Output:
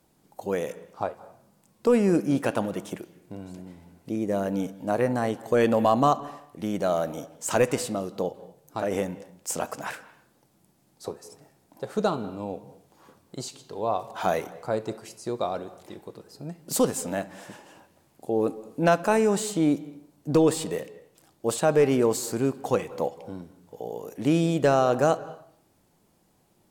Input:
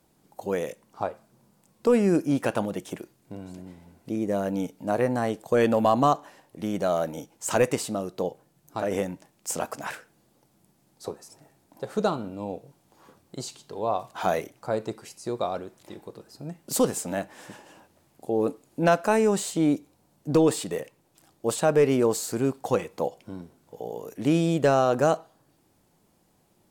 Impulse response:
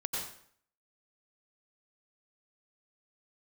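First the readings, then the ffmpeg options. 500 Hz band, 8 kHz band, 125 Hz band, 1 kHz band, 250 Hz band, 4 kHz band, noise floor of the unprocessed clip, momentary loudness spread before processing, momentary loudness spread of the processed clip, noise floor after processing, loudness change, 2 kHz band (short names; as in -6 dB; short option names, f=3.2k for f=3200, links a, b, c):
0.0 dB, 0.0 dB, 0.0 dB, 0.0 dB, 0.0 dB, 0.0 dB, -66 dBFS, 20 LU, 20 LU, -65 dBFS, 0.0 dB, 0.0 dB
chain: -filter_complex "[0:a]asplit=2[a][b];[1:a]atrim=start_sample=2205,lowpass=4.5k,adelay=71[c];[b][c]afir=irnorm=-1:irlink=0,volume=-20dB[d];[a][d]amix=inputs=2:normalize=0"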